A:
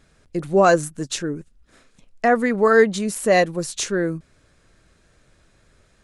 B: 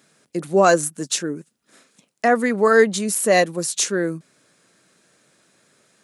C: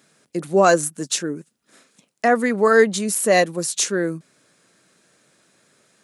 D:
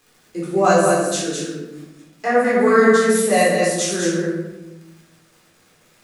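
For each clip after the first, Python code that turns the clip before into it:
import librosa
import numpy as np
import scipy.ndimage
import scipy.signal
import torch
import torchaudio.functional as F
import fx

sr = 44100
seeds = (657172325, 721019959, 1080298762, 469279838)

y1 = scipy.signal.sosfilt(scipy.signal.butter(4, 160.0, 'highpass', fs=sr, output='sos'), x)
y1 = fx.high_shelf(y1, sr, hz=6200.0, db=10.5)
y2 = y1
y3 = y2 + 10.0 ** (-5.0 / 20.0) * np.pad(y2, (int(208 * sr / 1000.0), 0))[:len(y2)]
y3 = fx.dmg_crackle(y3, sr, seeds[0], per_s=90.0, level_db=-35.0)
y3 = fx.room_shoebox(y3, sr, seeds[1], volume_m3=420.0, walls='mixed', distance_m=3.9)
y3 = y3 * 10.0 ** (-9.5 / 20.0)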